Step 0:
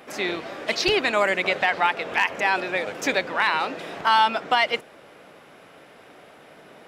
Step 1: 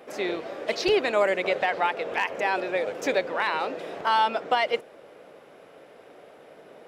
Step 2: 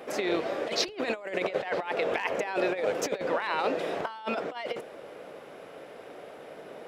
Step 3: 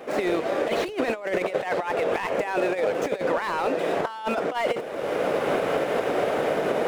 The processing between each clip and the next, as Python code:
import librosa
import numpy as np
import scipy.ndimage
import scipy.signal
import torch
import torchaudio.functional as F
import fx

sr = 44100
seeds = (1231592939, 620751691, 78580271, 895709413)

y1 = fx.peak_eq(x, sr, hz=490.0, db=9.5, octaves=1.2)
y1 = y1 * librosa.db_to_amplitude(-6.5)
y2 = fx.over_compress(y1, sr, threshold_db=-29.0, ratio=-0.5)
y3 = scipy.ndimage.median_filter(y2, 9, mode='constant')
y3 = fx.recorder_agc(y3, sr, target_db=-18.5, rise_db_per_s=32.0, max_gain_db=30)
y3 = fx.slew_limit(y3, sr, full_power_hz=76.0)
y3 = y3 * librosa.db_to_amplitude(3.0)